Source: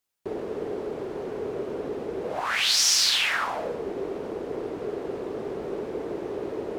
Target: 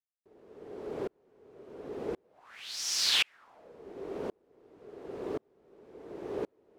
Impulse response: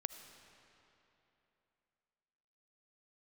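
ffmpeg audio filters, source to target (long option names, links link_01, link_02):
-af "aeval=exprs='val(0)*pow(10,-40*if(lt(mod(-0.93*n/s,1),2*abs(-0.93)/1000),1-mod(-0.93*n/s,1)/(2*abs(-0.93)/1000),(mod(-0.93*n/s,1)-2*abs(-0.93)/1000)/(1-2*abs(-0.93)/1000))/20)':channel_layout=same"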